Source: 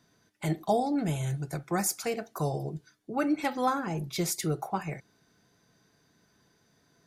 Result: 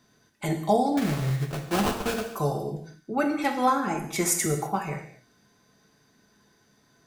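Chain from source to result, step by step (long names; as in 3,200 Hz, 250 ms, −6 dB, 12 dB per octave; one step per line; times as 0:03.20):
0:00.97–0:02.26: sample-rate reduction 2,000 Hz, jitter 20%
0:03.89–0:04.46: graphic EQ with 10 bands 125 Hz −11 dB, 250 Hz +8 dB, 500 Hz −4 dB, 1,000 Hz +7 dB, 2,000 Hz +7 dB, 4,000 Hz −9 dB, 8,000 Hz +8 dB
reverb whose tail is shaped and stops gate 280 ms falling, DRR 3.5 dB
level +2.5 dB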